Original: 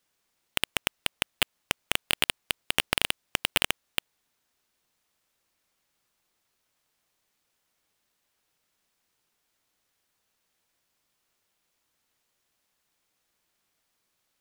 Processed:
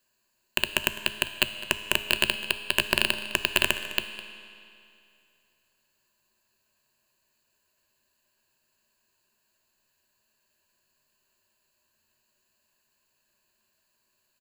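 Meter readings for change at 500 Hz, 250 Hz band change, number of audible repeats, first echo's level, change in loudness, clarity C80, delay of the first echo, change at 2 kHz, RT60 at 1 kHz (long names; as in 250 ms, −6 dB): +4.5 dB, +4.0 dB, 1, −17.0 dB, +2.5 dB, 10.5 dB, 207 ms, +4.0 dB, 2.6 s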